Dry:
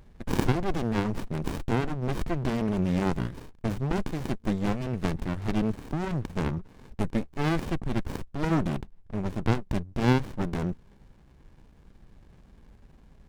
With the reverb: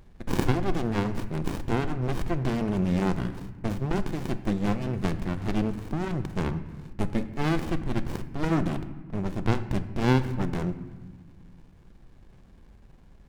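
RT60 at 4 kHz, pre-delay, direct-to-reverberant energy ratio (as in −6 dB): 0.90 s, 3 ms, 10.5 dB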